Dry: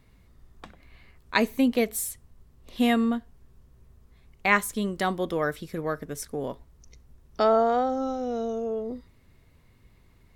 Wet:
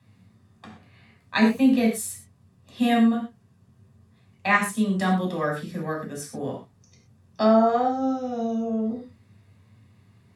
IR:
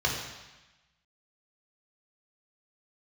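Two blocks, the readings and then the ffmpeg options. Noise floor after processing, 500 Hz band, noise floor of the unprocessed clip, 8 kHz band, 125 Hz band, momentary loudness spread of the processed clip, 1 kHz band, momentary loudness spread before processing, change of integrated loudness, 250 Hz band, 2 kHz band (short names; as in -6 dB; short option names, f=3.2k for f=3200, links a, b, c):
-60 dBFS, +0.5 dB, -59 dBFS, 0.0 dB, +6.5 dB, 14 LU, +2.0 dB, 13 LU, +3.0 dB, +5.5 dB, +1.0 dB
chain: -filter_complex "[1:a]atrim=start_sample=2205,afade=t=out:st=0.26:d=0.01,atrim=end_sample=11907,asetrate=70560,aresample=44100[a];[0:a][a]afir=irnorm=-1:irlink=0,volume=-6dB"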